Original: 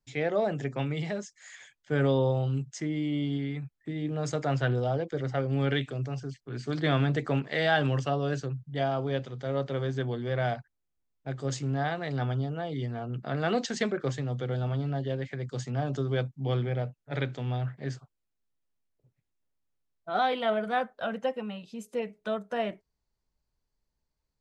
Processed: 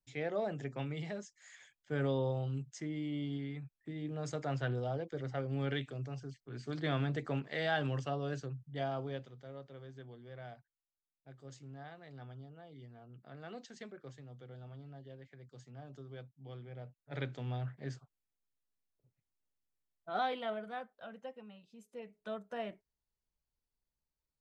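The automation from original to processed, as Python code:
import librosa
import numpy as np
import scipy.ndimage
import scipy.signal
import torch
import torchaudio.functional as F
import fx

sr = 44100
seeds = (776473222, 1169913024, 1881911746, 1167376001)

y = fx.gain(x, sr, db=fx.line((8.99, -8.5), (9.64, -20.0), (16.63, -20.0), (17.25, -7.5), (20.22, -7.5), (20.91, -16.5), (21.91, -16.5), (22.31, -10.0)))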